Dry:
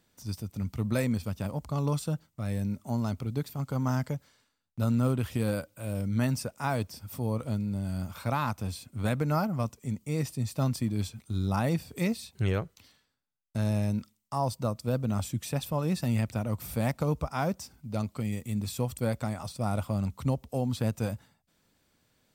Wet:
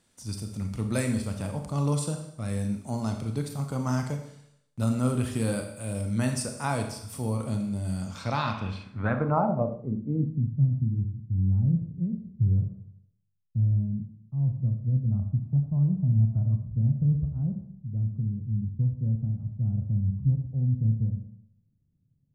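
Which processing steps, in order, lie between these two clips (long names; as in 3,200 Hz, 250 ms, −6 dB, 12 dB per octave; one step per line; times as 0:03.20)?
gain on a spectral selection 0:15.11–0:16.64, 600–1,500 Hz +12 dB
four-comb reverb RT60 0.73 s, combs from 28 ms, DRR 4.5 dB
low-pass filter sweep 9,600 Hz → 140 Hz, 0:07.93–0:10.57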